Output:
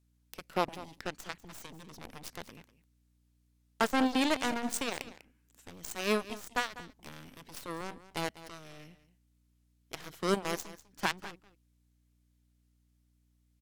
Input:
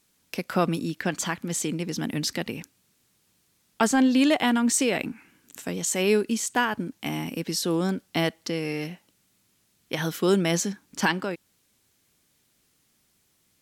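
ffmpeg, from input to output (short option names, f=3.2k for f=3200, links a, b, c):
-af "aeval=exprs='0.316*(cos(1*acos(clip(val(0)/0.316,-1,1)))-cos(1*PI/2))+0.0794*(cos(3*acos(clip(val(0)/0.316,-1,1)))-cos(3*PI/2))+0.02*(cos(7*acos(clip(val(0)/0.316,-1,1)))-cos(7*PI/2))+0.00794*(cos(8*acos(clip(val(0)/0.316,-1,1)))-cos(8*PI/2))':c=same,aeval=exprs='val(0)+0.000501*(sin(2*PI*60*n/s)+sin(2*PI*2*60*n/s)/2+sin(2*PI*3*60*n/s)/3+sin(2*PI*4*60*n/s)/4+sin(2*PI*5*60*n/s)/5)':c=same,aecho=1:1:197:0.158,volume=-3.5dB"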